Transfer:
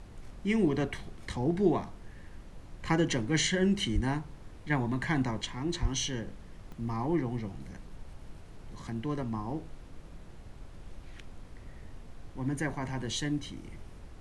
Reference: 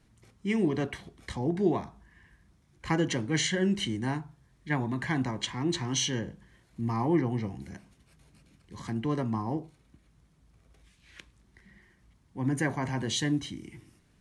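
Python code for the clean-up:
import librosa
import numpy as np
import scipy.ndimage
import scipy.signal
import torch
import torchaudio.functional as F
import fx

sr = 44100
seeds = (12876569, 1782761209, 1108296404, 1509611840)

y = fx.highpass(x, sr, hz=140.0, slope=24, at=(3.94, 4.06), fade=0.02)
y = fx.highpass(y, sr, hz=140.0, slope=24, at=(5.81, 5.93), fade=0.02)
y = fx.fix_interpolate(y, sr, at_s=(6.72,), length_ms=1.8)
y = fx.noise_reduce(y, sr, print_start_s=10.0, print_end_s=10.5, reduce_db=16.0)
y = fx.gain(y, sr, db=fx.steps((0.0, 0.0), (5.41, 4.0)))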